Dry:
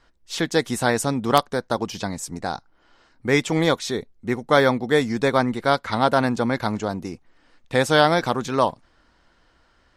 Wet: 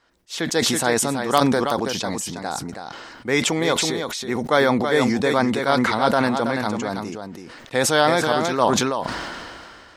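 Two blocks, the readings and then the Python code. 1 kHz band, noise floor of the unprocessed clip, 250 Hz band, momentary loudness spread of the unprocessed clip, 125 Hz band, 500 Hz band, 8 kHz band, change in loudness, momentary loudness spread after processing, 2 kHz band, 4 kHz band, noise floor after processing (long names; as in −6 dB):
+1.0 dB, −61 dBFS, +2.0 dB, 11 LU, −1.5 dB, +0.5 dB, +8.0 dB, +1.0 dB, 15 LU, +1.5 dB, +3.5 dB, −45 dBFS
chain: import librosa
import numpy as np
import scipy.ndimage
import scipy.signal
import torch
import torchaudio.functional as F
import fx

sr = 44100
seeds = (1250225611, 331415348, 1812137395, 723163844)

y = fx.highpass(x, sr, hz=220.0, slope=6)
y = y + 10.0 ** (-7.5 / 20.0) * np.pad(y, (int(327 * sr / 1000.0), 0))[:len(y)]
y = fx.sustainer(y, sr, db_per_s=25.0)
y = y * 10.0 ** (-1.0 / 20.0)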